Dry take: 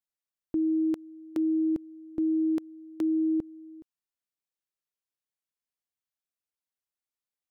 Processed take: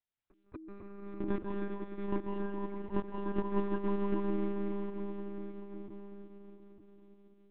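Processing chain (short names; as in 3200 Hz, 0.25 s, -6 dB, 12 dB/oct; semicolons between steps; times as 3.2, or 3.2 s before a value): regenerating reverse delay 0.18 s, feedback 76%, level -2 dB; treble ducked by the level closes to 310 Hz, closed at -19 dBFS; flipped gate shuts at -24 dBFS, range -24 dB; wavefolder -27 dBFS; pre-echo 0.225 s -21.5 dB; reverb RT60 5.7 s, pre-delay 0.141 s, DRR -4 dB; monotone LPC vocoder at 8 kHz 200 Hz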